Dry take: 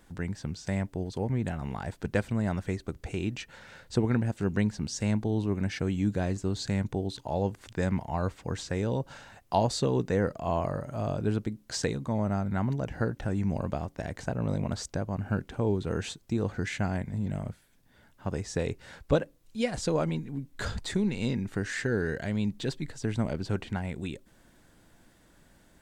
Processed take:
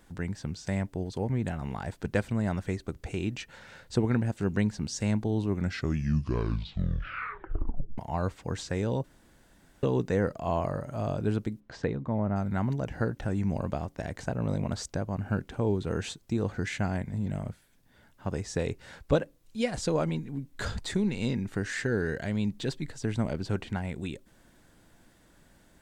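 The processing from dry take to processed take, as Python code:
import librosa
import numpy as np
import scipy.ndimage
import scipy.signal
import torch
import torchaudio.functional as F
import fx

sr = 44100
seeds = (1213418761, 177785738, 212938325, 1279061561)

y = fx.bessel_lowpass(x, sr, hz=1700.0, order=2, at=(11.59, 12.35), fade=0.02)
y = fx.edit(y, sr, fx.tape_stop(start_s=5.49, length_s=2.49),
    fx.room_tone_fill(start_s=9.04, length_s=0.79), tone=tone)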